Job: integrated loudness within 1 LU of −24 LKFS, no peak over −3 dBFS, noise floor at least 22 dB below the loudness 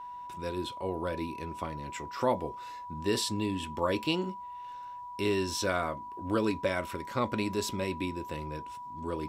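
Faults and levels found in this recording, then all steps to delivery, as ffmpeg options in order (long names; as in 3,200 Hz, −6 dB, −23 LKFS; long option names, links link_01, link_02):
interfering tone 980 Hz; level of the tone −40 dBFS; integrated loudness −33.5 LKFS; sample peak −14.5 dBFS; target loudness −24.0 LKFS
→ -af "bandreject=frequency=980:width=30"
-af "volume=9.5dB"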